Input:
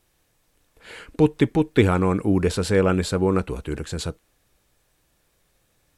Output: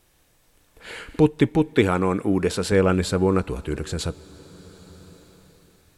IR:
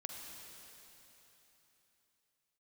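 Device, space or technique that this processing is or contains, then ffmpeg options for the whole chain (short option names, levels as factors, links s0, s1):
ducked reverb: -filter_complex "[0:a]asplit=3[s0][s1][s2];[1:a]atrim=start_sample=2205[s3];[s1][s3]afir=irnorm=-1:irlink=0[s4];[s2]apad=whole_len=263288[s5];[s4][s5]sidechaincompress=threshold=0.0126:ratio=6:attack=16:release=963,volume=1.19[s6];[s0][s6]amix=inputs=2:normalize=0,asettb=1/sr,asplit=3[s7][s8][s9];[s7]atrim=end=1.734[s10];[s8]atrim=start=1.73:end=2.72,asetpts=PTS-STARTPTS,afade=t=in:d=0.004:c=qsin,afade=t=out:st=0.986:d=0.004:c=qsin,highpass=f=180:p=1[s11];[s9]atrim=start=2.716[s12];[s10][s11]acrossfade=d=0.004:c1=hsin:c2=qsin[s13];[s13][s12]acrossfade=d=0.004:c1=qsin:c2=hsin"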